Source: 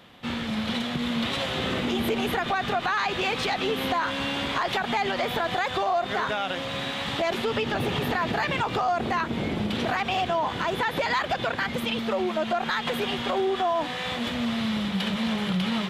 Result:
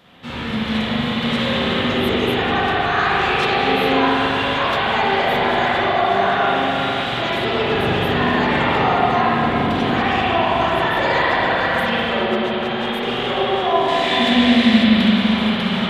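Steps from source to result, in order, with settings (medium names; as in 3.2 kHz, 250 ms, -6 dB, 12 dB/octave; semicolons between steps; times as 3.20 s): 12.25–13.03 s: compressor with a negative ratio -32 dBFS, ratio -0.5; 13.88–14.84 s: ten-band graphic EQ 125 Hz -9 dB, 250 Hz +10 dB, 500 Hz +3 dB, 1 kHz -6 dB, 2 kHz +5 dB, 4 kHz +6 dB, 8 kHz +7 dB; spring tank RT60 3.9 s, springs 41/56 ms, chirp 20 ms, DRR -9.5 dB; trim -1 dB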